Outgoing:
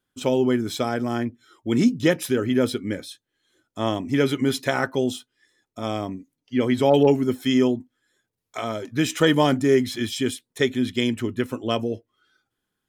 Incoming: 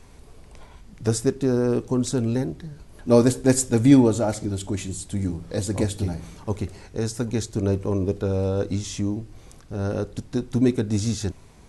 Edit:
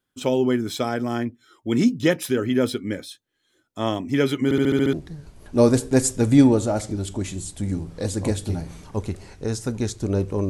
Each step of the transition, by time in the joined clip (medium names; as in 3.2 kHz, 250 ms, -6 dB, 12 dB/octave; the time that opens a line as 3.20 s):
outgoing
4.44 s: stutter in place 0.07 s, 7 plays
4.93 s: go over to incoming from 2.46 s